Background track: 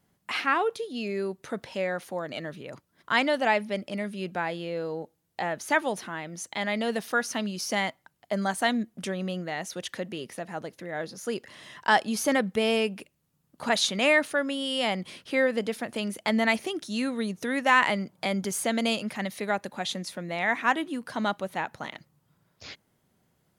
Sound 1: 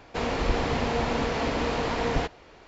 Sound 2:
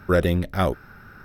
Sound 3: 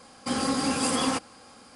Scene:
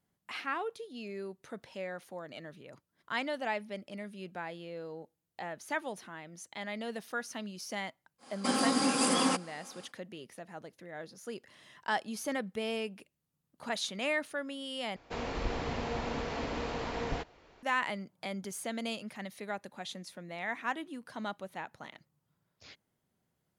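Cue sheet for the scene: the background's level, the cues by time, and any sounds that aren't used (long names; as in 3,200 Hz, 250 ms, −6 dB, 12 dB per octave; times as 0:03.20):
background track −10.5 dB
0:08.18: mix in 3 −2 dB, fades 0.10 s + high-pass filter 170 Hz 24 dB per octave
0:14.96: overwrite with 1 −9 dB
not used: 2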